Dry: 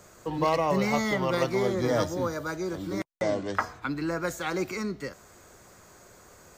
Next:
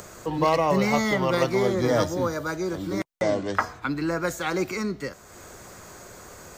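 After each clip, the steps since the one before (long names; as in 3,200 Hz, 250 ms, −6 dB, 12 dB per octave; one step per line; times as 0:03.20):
upward compression, threshold −40 dBFS
level +3.5 dB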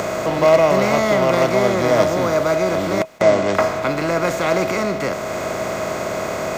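compressor on every frequency bin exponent 0.4
hollow resonant body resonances 640/2,500 Hz, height 14 dB, ringing for 95 ms
level −1 dB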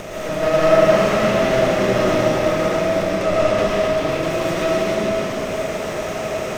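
lower of the sound and its delayed copy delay 0.33 ms
comb and all-pass reverb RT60 3 s, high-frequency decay 0.85×, pre-delay 70 ms, DRR −7 dB
level −8 dB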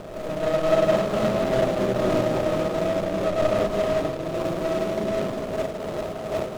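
running median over 25 samples
amplitude modulation by smooth noise, depth 60%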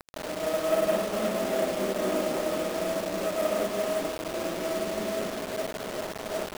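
linear-phase brick-wall band-pass 170–3,700 Hz
bit reduction 5 bits
level −5.5 dB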